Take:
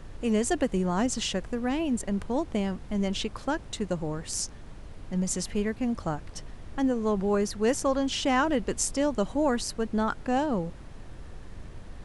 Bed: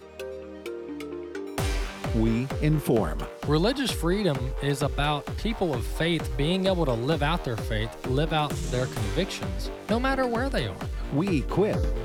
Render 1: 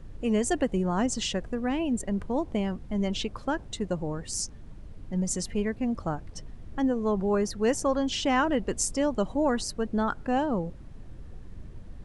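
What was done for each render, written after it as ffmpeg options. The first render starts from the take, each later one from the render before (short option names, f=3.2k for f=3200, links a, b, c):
-af "afftdn=nr=9:nf=-44"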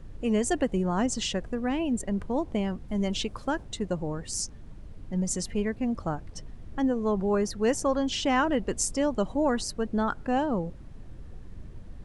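-filter_complex "[0:a]asettb=1/sr,asplit=3[a][b][c];[a]atrim=end=2.884[d];[b]atrim=start=2.88:end=3.63,asetpts=PTS-STARTPTS,afade=t=in:d=0.004:c=qsin,afade=t=out:st=0.746:d=0.004:c=qsin,highshelf=f=8.5k:g=9[e];[c]atrim=start=3.626[f];[d][e]acrossfade=d=0.004:c1=hsin:c2=qsin[g];[g][f]acrossfade=d=0.004:c1=qsin:c2=hsin"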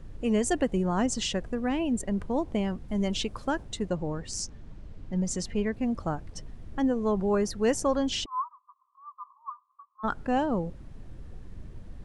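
-filter_complex "[0:a]asettb=1/sr,asplit=3[a][b][c];[a]atrim=end=3.894[d];[b]atrim=start=3.89:end=5.74,asetpts=PTS-STARTPTS,afade=t=in:d=0.004:c=qsin,afade=t=out:st=1.846:d=0.004:c=qsin,lowpass=7.1k[e];[c]atrim=start=5.736[f];[d][e]acrossfade=d=0.004:c1=hsin:c2=qsin[g];[g][f]acrossfade=d=0.004:c1=qsin:c2=hsin,asplit=3[h][i][j];[h]afade=t=out:st=8.24:d=0.02[k];[i]asuperpass=centerf=1100:order=8:qfactor=4.8,afade=t=in:st=8.24:d=0.02,afade=t=out:st=10.03:d=0.02[l];[j]afade=t=in:st=10.03:d=0.02[m];[k][l][m]amix=inputs=3:normalize=0"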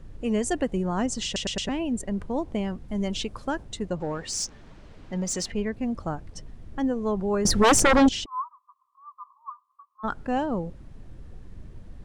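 -filter_complex "[0:a]asettb=1/sr,asplit=3[a][b][c];[a]atrim=end=4.004[d];[b]atrim=start=4:end=5.52,asetpts=PTS-STARTPTS,afade=t=in:d=0.004:c=qsin,afade=t=out:st=1.516:d=0.004:c=qsin,asplit=2[e][f];[f]highpass=f=720:p=1,volume=14dB,asoftclip=type=tanh:threshold=-17dB[g];[e][g]amix=inputs=2:normalize=0,lowpass=f=7k:p=1,volume=-6dB[h];[c]atrim=start=5.516[i];[d][h]acrossfade=d=0.004:c1=hsin:c2=qsin[j];[j][i]acrossfade=d=0.004:c1=qsin:c2=hsin,asettb=1/sr,asplit=3[k][l][m];[k]atrim=end=7.454[n];[l]atrim=start=7.45:end=8.09,asetpts=PTS-STARTPTS,afade=t=in:d=0.004:c=qsin,afade=t=out:st=0.636:d=0.004:c=qsin,aeval=exprs='0.224*sin(PI/2*3.55*val(0)/0.224)':c=same[o];[m]atrim=start=8.086[p];[n][o]acrossfade=d=0.004:c1=hsin:c2=qsin[q];[q][p]acrossfade=d=0.004:c1=qsin:c2=hsin,asplit=5[r][s][t][u][v];[r]atrim=end=1.362[w];[s]atrim=start=1.248:end=1.362[x];[t]atrim=start=1.248:end=1.362[y];[u]atrim=start=1.248:end=1.362[z];[v]atrim=start=1.688[aa];[w][x]acrossfade=d=0.004:c1=hsin:c2=hsin[ab];[ab][y]acrossfade=d=0.004:c1=hsin:c2=hsin[ac];[ac][z]acrossfade=d=0.004:c1=hsin:c2=hsin[ad];[ad][aa]acrossfade=d=0.004:c1=hsin:c2=hsin"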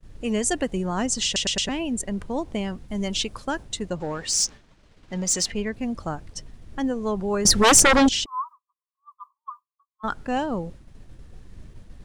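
-af "agate=range=-33dB:threshold=-38dB:ratio=3:detection=peak,highshelf=f=2k:g=8.5"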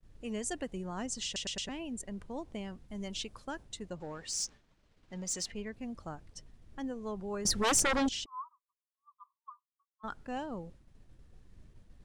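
-af "volume=-13dB"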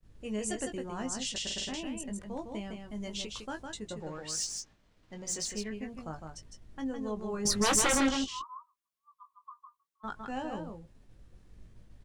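-filter_complex "[0:a]asplit=2[a][b];[b]adelay=19,volume=-6dB[c];[a][c]amix=inputs=2:normalize=0,aecho=1:1:157:0.562"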